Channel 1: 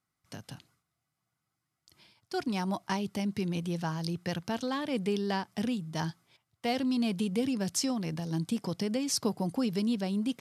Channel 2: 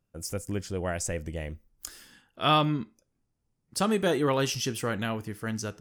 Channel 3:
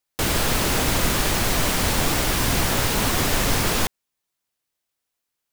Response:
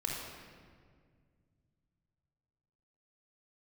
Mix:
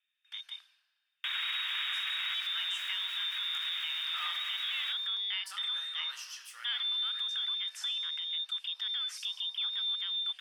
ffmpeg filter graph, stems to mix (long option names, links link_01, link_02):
-filter_complex "[0:a]volume=2dB,asplit=3[link_01][link_02][link_03];[link_02]volume=-16dB[link_04];[1:a]flanger=delay=16:depth=7.7:speed=2,adelay=1700,volume=-12dB,asplit=2[link_05][link_06];[link_06]volume=-4.5dB[link_07];[2:a]adelay=1050,volume=-3.5dB,asplit=2[link_08][link_09];[link_09]volume=-24dB[link_10];[link_03]apad=whole_len=290099[link_11];[link_08][link_11]sidechaincompress=threshold=-33dB:ratio=8:attack=16:release=1410[link_12];[link_01][link_12]amix=inputs=2:normalize=0,lowpass=frequency=3200:width_type=q:width=0.5098,lowpass=frequency=3200:width_type=q:width=0.6013,lowpass=frequency=3200:width_type=q:width=0.9,lowpass=frequency=3200:width_type=q:width=2.563,afreqshift=-3800,alimiter=limit=-20dB:level=0:latency=1,volume=0dB[link_13];[3:a]atrim=start_sample=2205[link_14];[link_04][link_07][link_10]amix=inputs=3:normalize=0[link_15];[link_15][link_14]afir=irnorm=-1:irlink=0[link_16];[link_05][link_13][link_16]amix=inputs=3:normalize=0,acrossover=split=2500[link_17][link_18];[link_18]acompressor=threshold=-37dB:ratio=4:attack=1:release=60[link_19];[link_17][link_19]amix=inputs=2:normalize=0,highpass=frequency=1400:width=0.5412,highpass=frequency=1400:width=1.3066"